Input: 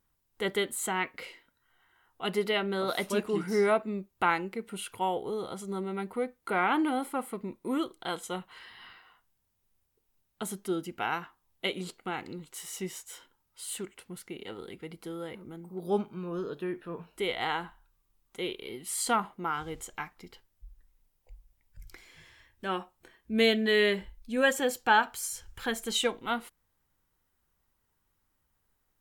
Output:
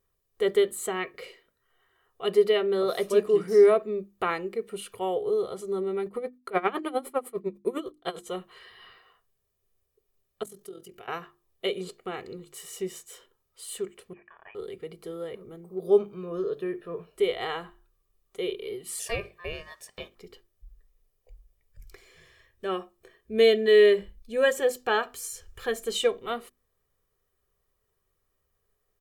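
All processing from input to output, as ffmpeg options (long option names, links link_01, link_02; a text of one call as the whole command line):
ffmpeg -i in.wav -filter_complex "[0:a]asettb=1/sr,asplit=3[link_01][link_02][link_03];[link_01]atrim=end=6.064[link_04];[link_02]atrim=start=6.06:end=8.31,asetpts=PTS-STARTPTS,afade=type=in:duration=0.004:curve=qsin,afade=type=out:start_time=2.246:duration=0.004:curve=qsin,agate=range=-14dB:threshold=-55dB:ratio=16:release=100:detection=peak,acontrast=49,aeval=exprs='val(0)*pow(10,-23*(0.5-0.5*cos(2*PI*9.9*n/s))/20)':channel_layout=same[link_05];[link_03]atrim=start=8.306[link_06];[link_04][link_05]acrossfade=duration=0.004:curve1=hsin:curve2=qsin[link_07];[link_07][link_06]acrossfade=duration=0.004:curve1=qsin:curve2=hsin,asettb=1/sr,asplit=3[link_08][link_09][link_10];[link_08]atrim=end=10.434[link_11];[link_09]atrim=start=10.43:end=11.08,asetpts=PTS-STARTPTS,afade=type=in:duration=0.004:curve=qsin,afade=type=out:start_time=0.646:duration=0.004:curve=qsin,highshelf=frequency=4700:gain=8.5,acompressor=threshold=-42dB:ratio=4:attack=3.2:release=140:knee=1:detection=peak,tremolo=f=43:d=0.71[link_12];[link_10]atrim=start=11.076[link_13];[link_11][link_12]acrossfade=duration=0.004:curve1=hsin:curve2=qsin[link_14];[link_14][link_13]acrossfade=duration=0.004:curve1=qsin:curve2=hsin,asettb=1/sr,asplit=3[link_15][link_16][link_17];[link_15]atrim=end=14.134[link_18];[link_16]atrim=start=14.13:end=14.55,asetpts=PTS-STARTPTS,afade=type=in:duration=0.004:curve=qsin,afade=type=out:start_time=0.416:duration=0.004:curve=qsin,highpass=frequency=1200:width=0.5412,highpass=frequency=1200:width=1.3066,lowpass=frequency=3200:width_type=q:width=0.5098,lowpass=frequency=3200:width_type=q:width=0.6013,lowpass=frequency=3200:width_type=q:width=0.9,lowpass=frequency=3200:width_type=q:width=2.563,afreqshift=-3800[link_19];[link_17]atrim=start=14.546[link_20];[link_18][link_19]acrossfade=duration=0.004:curve1=hsin:curve2=qsin[link_21];[link_21][link_20]acrossfade=duration=0.004:curve1=qsin:curve2=hsin,asettb=1/sr,asplit=3[link_22][link_23][link_24];[link_22]atrim=end=18.994[link_25];[link_23]atrim=start=18.99:end=20.15,asetpts=PTS-STARTPTS,afade=type=in:duration=0.004:curve=qsin,afade=type=out:start_time=1.156:duration=0.004:curve=qsin,acompressor=mode=upward:threshold=-44dB:ratio=2.5:attack=3.2:release=140:knee=2.83:detection=peak,highpass=frequency=550:poles=1,aeval=exprs='val(0)*sin(2*PI*1400*n/s)':channel_layout=same[link_26];[link_24]atrim=start=20.146[link_27];[link_25][link_26]acrossfade=duration=0.004:curve1=hsin:curve2=qsin[link_28];[link_28][link_27]acrossfade=duration=0.004:curve1=qsin:curve2=hsin,equalizer=frequency=400:width=2.8:gain=13.5,bandreject=frequency=50:width_type=h:width=6,bandreject=frequency=100:width_type=h:width=6,bandreject=frequency=150:width_type=h:width=6,bandreject=frequency=200:width_type=h:width=6,bandreject=frequency=250:width_type=h:width=6,bandreject=frequency=300:width_type=h:width=6,bandreject=frequency=350:width_type=h:width=6,aecho=1:1:1.7:0.55,volume=-2.5dB" out.wav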